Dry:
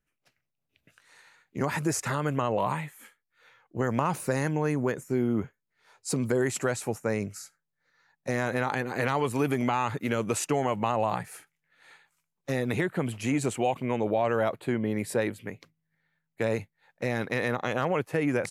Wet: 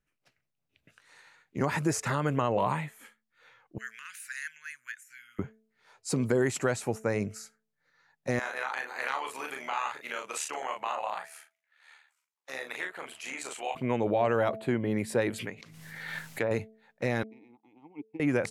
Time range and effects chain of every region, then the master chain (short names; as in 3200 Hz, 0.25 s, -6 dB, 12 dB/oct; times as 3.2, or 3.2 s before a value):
3.78–5.39 elliptic high-pass 1600 Hz, stop band 50 dB + bell 4700 Hz -6 dB 0.99 oct
8.39–13.75 HPF 920 Hz + doubler 38 ms -3.5 dB + AM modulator 75 Hz, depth 40%
15.3–16.51 treble ducked by the level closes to 1200 Hz, closed at -25 dBFS + tilt +2 dB/oct + backwards sustainer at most 34 dB/s
17.23–18.2 vowel filter u + bell 1400 Hz -13.5 dB 0.98 oct + upward expander 2.5:1, over -56 dBFS
whole clip: high shelf 11000 Hz -9 dB; de-hum 219.8 Hz, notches 3